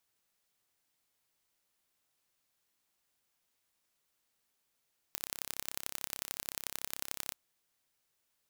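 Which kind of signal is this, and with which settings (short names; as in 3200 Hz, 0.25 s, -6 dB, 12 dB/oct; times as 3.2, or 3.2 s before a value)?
pulse train 33.6/s, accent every 3, -8 dBFS 2.20 s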